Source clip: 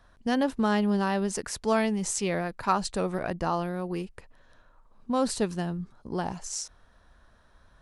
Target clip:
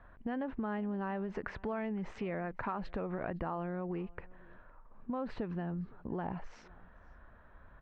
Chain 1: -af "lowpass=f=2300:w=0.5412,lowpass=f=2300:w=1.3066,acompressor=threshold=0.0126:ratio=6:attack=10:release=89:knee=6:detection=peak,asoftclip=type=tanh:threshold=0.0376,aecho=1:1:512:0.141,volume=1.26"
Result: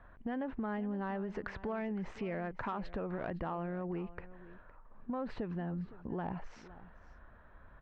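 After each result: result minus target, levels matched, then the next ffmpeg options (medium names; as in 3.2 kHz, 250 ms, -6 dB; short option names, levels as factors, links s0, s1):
saturation: distortion +18 dB; echo-to-direct +7.5 dB
-af "lowpass=f=2300:w=0.5412,lowpass=f=2300:w=1.3066,acompressor=threshold=0.0126:ratio=6:attack=10:release=89:knee=6:detection=peak,asoftclip=type=tanh:threshold=0.119,aecho=1:1:512:0.141,volume=1.26"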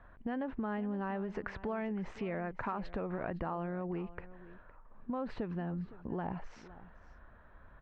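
echo-to-direct +7.5 dB
-af "lowpass=f=2300:w=0.5412,lowpass=f=2300:w=1.3066,acompressor=threshold=0.0126:ratio=6:attack=10:release=89:knee=6:detection=peak,asoftclip=type=tanh:threshold=0.119,aecho=1:1:512:0.0596,volume=1.26"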